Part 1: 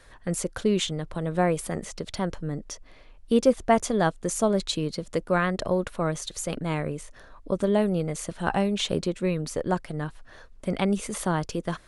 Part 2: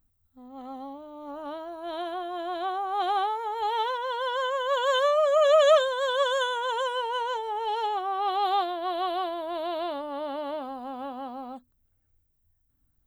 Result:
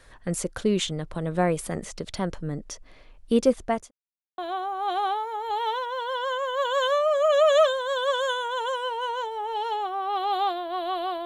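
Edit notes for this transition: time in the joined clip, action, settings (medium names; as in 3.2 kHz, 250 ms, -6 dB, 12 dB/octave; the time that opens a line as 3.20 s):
part 1
3.36–3.91 s: fade out equal-power
3.91–4.38 s: mute
4.38 s: go over to part 2 from 2.50 s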